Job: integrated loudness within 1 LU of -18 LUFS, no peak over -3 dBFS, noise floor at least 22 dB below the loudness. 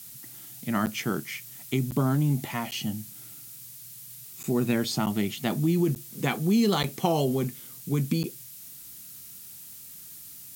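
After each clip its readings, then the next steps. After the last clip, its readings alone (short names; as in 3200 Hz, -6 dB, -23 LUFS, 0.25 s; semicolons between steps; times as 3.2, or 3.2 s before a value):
dropouts 8; longest dropout 9.3 ms; noise floor -45 dBFS; noise floor target -50 dBFS; loudness -27.5 LUFS; peak -8.5 dBFS; loudness target -18.0 LUFS
-> interpolate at 0.86/1.91/2.71/4.43/5.06/5.95/6.83/8.23, 9.3 ms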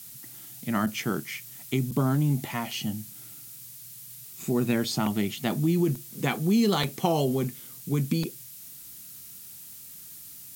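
dropouts 0; noise floor -45 dBFS; noise floor target -50 dBFS
-> denoiser 6 dB, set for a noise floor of -45 dBFS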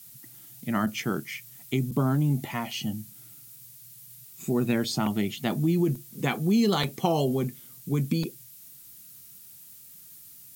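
noise floor -49 dBFS; noise floor target -50 dBFS
-> denoiser 6 dB, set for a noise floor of -49 dBFS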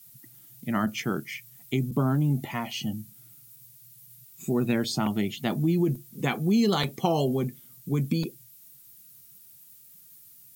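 noise floor -53 dBFS; loudness -27.5 LUFS; peak -9.0 dBFS; loudness target -18.0 LUFS
-> gain +9.5 dB; limiter -3 dBFS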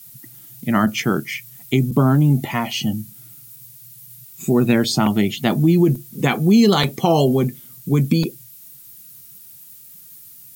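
loudness -18.0 LUFS; peak -3.0 dBFS; noise floor -43 dBFS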